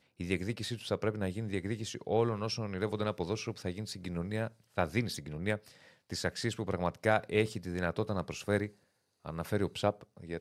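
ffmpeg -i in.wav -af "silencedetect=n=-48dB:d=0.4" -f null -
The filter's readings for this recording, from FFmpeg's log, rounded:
silence_start: 8.70
silence_end: 9.25 | silence_duration: 0.55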